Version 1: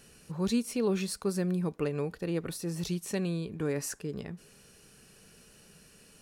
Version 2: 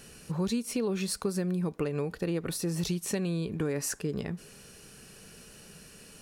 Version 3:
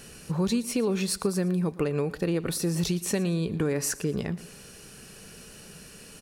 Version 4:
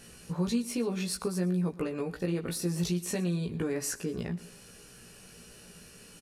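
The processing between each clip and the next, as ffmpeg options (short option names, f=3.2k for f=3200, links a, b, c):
-af "acompressor=threshold=-33dB:ratio=6,volume=6dB"
-af "aecho=1:1:115|230|345:0.119|0.038|0.0122,volume=4dB"
-filter_complex "[0:a]asplit=2[a][b];[b]adelay=17,volume=-3dB[c];[a][c]amix=inputs=2:normalize=0,aresample=32000,aresample=44100,volume=-6.5dB"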